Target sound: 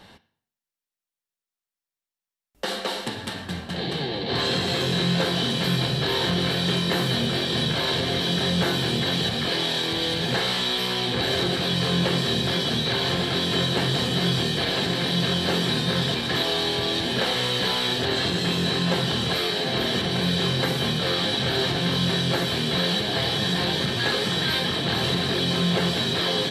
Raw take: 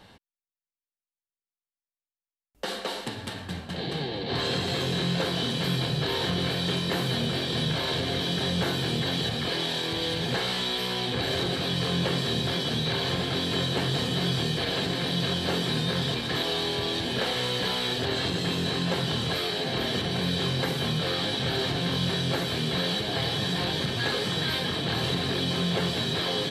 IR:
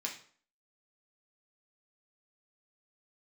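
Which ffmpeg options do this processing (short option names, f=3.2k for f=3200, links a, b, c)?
-filter_complex "[0:a]asplit=2[a][b];[1:a]atrim=start_sample=2205,asetrate=34398,aresample=44100[c];[b][c]afir=irnorm=-1:irlink=0,volume=-11dB[d];[a][d]amix=inputs=2:normalize=0,volume=2dB"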